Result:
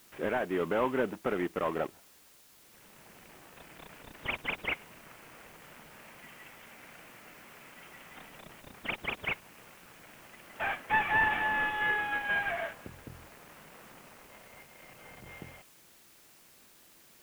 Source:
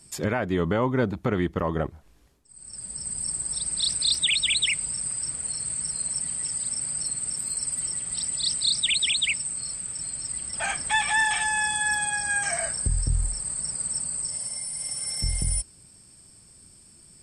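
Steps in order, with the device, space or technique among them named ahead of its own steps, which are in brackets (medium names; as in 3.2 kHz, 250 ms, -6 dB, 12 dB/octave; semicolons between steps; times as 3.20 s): 5.98–8.16 s: resonant high shelf 4.4 kHz -13.5 dB, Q 1.5; army field radio (band-pass 320–3200 Hz; CVSD coder 16 kbps; white noise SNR 23 dB); trim -2 dB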